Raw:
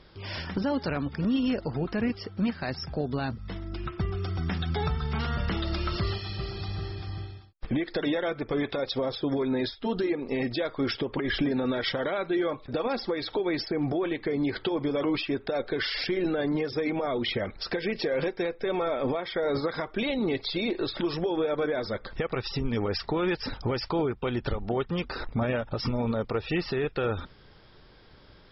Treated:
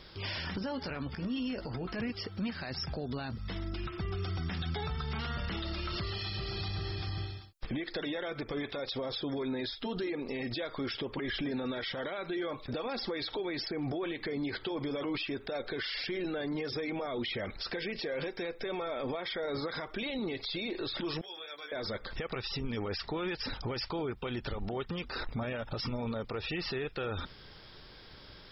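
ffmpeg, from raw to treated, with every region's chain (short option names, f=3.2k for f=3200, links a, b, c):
-filter_complex "[0:a]asettb=1/sr,asplit=3[a][b][c];[a]atrim=end=0.594[d];[b]atrim=start=0.59:end=2,asetpts=PTS-STARTPTS,afade=t=in:d=0.004:c=qsin,afade=t=out:st=1.406:d=0.004:c=qsin,bandreject=f=3.8k:w=9.9,acompressor=threshold=-32dB:ratio=6:attack=3.2:release=140:knee=1:detection=peak,asplit=2[e][f];[f]adelay=16,volume=-9dB[g];[e][g]amix=inputs=2:normalize=0,atrim=end_sample=62181[h];[c]atrim=start=1.996[i];[d][h]acrossfade=d=0.004:c1=hsin:c2=qsin[j];[j][i]acrossfade=d=0.004:c1=qsin:c2=hsin,asettb=1/sr,asplit=3[k][l][m];[k]atrim=end=21.214[n];[l]atrim=start=21.21:end=21.72,asetpts=PTS-STARTPTS,afade=t=in:d=0.004:c=qsin,afade=t=out:st=0.506:d=0.004:c=qsin,aderivative,bandreject=f=50:t=h:w=6,bandreject=f=100:t=h:w=6,bandreject=f=150:t=h:w=6,bandreject=f=200:t=h:w=6,bandreject=f=250:t=h:w=6,bandreject=f=300:t=h:w=6,bandreject=f=350:t=h:w=6,bandreject=f=400:t=h:w=6,asplit=2[o][p];[p]adelay=14,volume=-5dB[q];[o][q]amix=inputs=2:normalize=0,atrim=end_sample=22491[r];[m]atrim=start=21.716[s];[n][r]acrossfade=d=0.004:c1=hsin:c2=qsin[t];[t][s]acrossfade=d=0.004:c1=qsin:c2=hsin,acrossover=split=5000[u][v];[v]acompressor=threshold=-59dB:ratio=4:attack=1:release=60[w];[u][w]amix=inputs=2:normalize=0,highshelf=f=2.4k:g=9.5,alimiter=level_in=4dB:limit=-24dB:level=0:latency=1:release=74,volume=-4dB"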